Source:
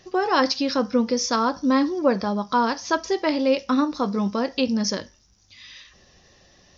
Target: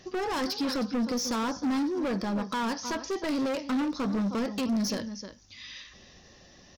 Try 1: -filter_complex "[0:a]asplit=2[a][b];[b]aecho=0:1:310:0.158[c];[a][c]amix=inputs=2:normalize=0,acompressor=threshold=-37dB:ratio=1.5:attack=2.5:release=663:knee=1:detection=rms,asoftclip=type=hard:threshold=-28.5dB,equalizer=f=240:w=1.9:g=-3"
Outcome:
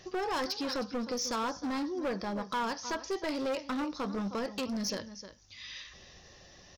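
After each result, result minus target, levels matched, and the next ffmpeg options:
compressor: peak gain reduction +4 dB; 250 Hz band -2.5 dB
-filter_complex "[0:a]asplit=2[a][b];[b]aecho=0:1:310:0.158[c];[a][c]amix=inputs=2:normalize=0,acompressor=threshold=-25dB:ratio=1.5:attack=2.5:release=663:knee=1:detection=rms,asoftclip=type=hard:threshold=-28.5dB,equalizer=f=240:w=1.9:g=-3"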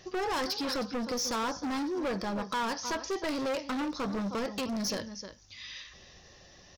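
250 Hz band -3.0 dB
-filter_complex "[0:a]asplit=2[a][b];[b]aecho=0:1:310:0.158[c];[a][c]amix=inputs=2:normalize=0,acompressor=threshold=-25dB:ratio=1.5:attack=2.5:release=663:knee=1:detection=rms,asoftclip=type=hard:threshold=-28.5dB,equalizer=f=240:w=1.9:g=4.5"

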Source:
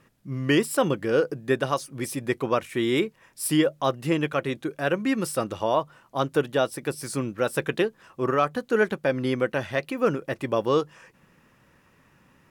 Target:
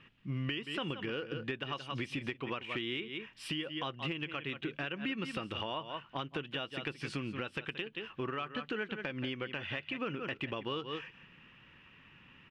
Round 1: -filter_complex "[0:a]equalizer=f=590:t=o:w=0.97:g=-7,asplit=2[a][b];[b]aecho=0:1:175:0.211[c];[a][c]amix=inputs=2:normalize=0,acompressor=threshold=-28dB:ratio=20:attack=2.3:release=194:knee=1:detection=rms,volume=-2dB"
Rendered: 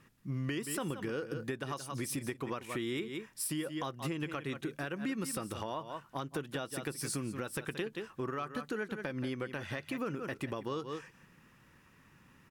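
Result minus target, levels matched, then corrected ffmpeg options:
4000 Hz band -6.5 dB
-filter_complex "[0:a]lowpass=f=2.9k:t=q:w=4.7,equalizer=f=590:t=o:w=0.97:g=-7,asplit=2[a][b];[b]aecho=0:1:175:0.211[c];[a][c]amix=inputs=2:normalize=0,acompressor=threshold=-28dB:ratio=20:attack=2.3:release=194:knee=1:detection=rms,volume=-2dB"

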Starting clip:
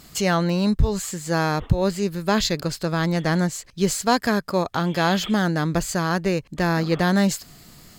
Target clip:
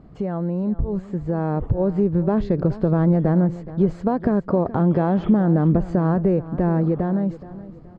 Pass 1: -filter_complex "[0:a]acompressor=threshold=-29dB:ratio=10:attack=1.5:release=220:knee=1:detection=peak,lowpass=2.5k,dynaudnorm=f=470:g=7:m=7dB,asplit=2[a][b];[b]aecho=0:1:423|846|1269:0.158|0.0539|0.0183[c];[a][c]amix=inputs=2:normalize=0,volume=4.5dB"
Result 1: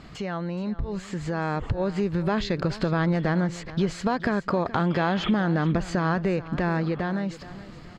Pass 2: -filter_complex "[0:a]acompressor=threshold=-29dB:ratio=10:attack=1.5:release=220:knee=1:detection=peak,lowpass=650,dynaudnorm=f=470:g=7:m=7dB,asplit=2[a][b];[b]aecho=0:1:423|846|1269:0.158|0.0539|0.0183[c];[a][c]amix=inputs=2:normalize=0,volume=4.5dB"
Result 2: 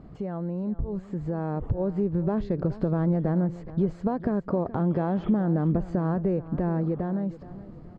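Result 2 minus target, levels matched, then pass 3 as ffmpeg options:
compressor: peak gain reduction +7 dB
-filter_complex "[0:a]acompressor=threshold=-21.5dB:ratio=10:attack=1.5:release=220:knee=1:detection=peak,lowpass=650,dynaudnorm=f=470:g=7:m=7dB,asplit=2[a][b];[b]aecho=0:1:423|846|1269:0.158|0.0539|0.0183[c];[a][c]amix=inputs=2:normalize=0,volume=4.5dB"

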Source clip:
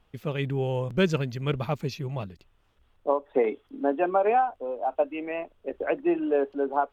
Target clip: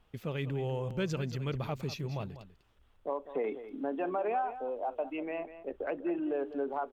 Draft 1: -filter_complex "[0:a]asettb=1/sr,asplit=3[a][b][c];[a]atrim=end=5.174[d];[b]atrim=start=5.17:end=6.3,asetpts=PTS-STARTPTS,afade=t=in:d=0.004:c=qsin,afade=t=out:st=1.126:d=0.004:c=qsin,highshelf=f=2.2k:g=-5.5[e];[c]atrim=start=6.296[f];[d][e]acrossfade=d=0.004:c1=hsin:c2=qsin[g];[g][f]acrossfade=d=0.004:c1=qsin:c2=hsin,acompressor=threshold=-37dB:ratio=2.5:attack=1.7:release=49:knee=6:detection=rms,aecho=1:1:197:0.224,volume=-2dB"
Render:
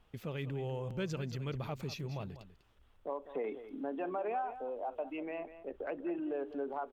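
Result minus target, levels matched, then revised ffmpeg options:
compressor: peak gain reduction +4 dB
-filter_complex "[0:a]asettb=1/sr,asplit=3[a][b][c];[a]atrim=end=5.174[d];[b]atrim=start=5.17:end=6.3,asetpts=PTS-STARTPTS,afade=t=in:d=0.004:c=qsin,afade=t=out:st=1.126:d=0.004:c=qsin,highshelf=f=2.2k:g=-5.5[e];[c]atrim=start=6.296[f];[d][e]acrossfade=d=0.004:c1=hsin:c2=qsin[g];[g][f]acrossfade=d=0.004:c1=qsin:c2=hsin,acompressor=threshold=-30dB:ratio=2.5:attack=1.7:release=49:knee=6:detection=rms,aecho=1:1:197:0.224,volume=-2dB"

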